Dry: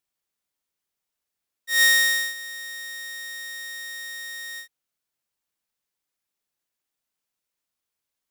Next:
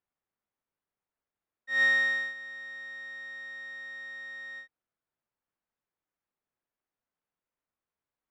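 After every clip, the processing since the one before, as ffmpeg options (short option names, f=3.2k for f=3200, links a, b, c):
-af "lowpass=1.6k"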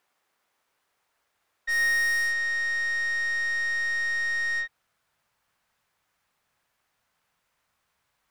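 -filter_complex "[0:a]asplit=2[a][b];[b]highpass=f=720:p=1,volume=29dB,asoftclip=type=tanh:threshold=-17dB[c];[a][c]amix=inputs=2:normalize=0,lowpass=f=6.3k:p=1,volume=-6dB,asubboost=boost=9:cutoff=110,volume=-2.5dB"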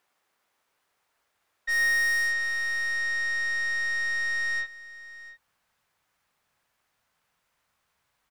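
-af "aecho=1:1:697:0.133"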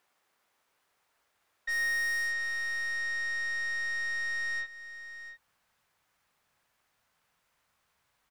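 -af "acompressor=threshold=-40dB:ratio=1.5"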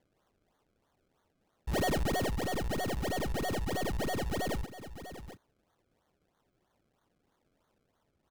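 -af "acrusher=samples=33:mix=1:aa=0.000001:lfo=1:lforange=33:lforate=3.1"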